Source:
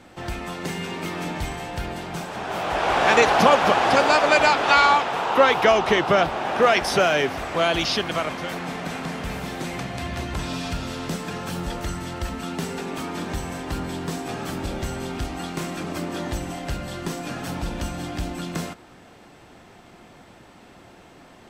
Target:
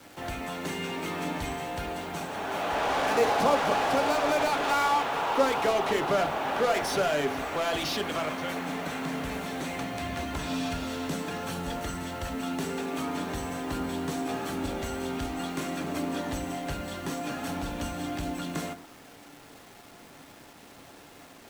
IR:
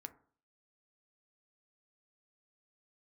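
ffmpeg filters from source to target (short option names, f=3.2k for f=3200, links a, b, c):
-filter_complex "[0:a]lowshelf=f=94:g=-8,bandreject=f=5k:w=12,acrossover=split=180|1000[a][b][c];[c]volume=26dB,asoftclip=hard,volume=-26dB[d];[a][b][d]amix=inputs=3:normalize=0,acrusher=bits=7:mix=0:aa=0.000001,asplit=2[e][f];[f]aeval=exprs='0.0708*(abs(mod(val(0)/0.0708+3,4)-2)-1)':c=same,volume=-4.5dB[g];[e][g]amix=inputs=2:normalize=0[h];[1:a]atrim=start_sample=2205[i];[h][i]afir=irnorm=-1:irlink=0,volume=-1.5dB"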